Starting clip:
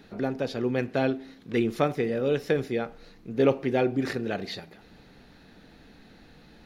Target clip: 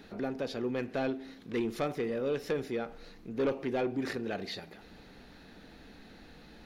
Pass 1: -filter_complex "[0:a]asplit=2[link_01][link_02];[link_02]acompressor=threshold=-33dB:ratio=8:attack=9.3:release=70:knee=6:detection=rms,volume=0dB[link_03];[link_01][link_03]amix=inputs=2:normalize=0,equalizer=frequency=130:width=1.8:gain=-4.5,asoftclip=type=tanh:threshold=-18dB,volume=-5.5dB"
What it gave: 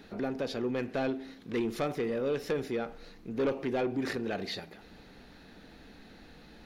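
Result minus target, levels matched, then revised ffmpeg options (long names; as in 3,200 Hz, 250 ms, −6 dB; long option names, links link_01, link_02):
downward compressor: peak gain reduction −9 dB
-filter_complex "[0:a]asplit=2[link_01][link_02];[link_02]acompressor=threshold=-43.5dB:ratio=8:attack=9.3:release=70:knee=6:detection=rms,volume=0dB[link_03];[link_01][link_03]amix=inputs=2:normalize=0,equalizer=frequency=130:width=1.8:gain=-4.5,asoftclip=type=tanh:threshold=-18dB,volume=-5.5dB"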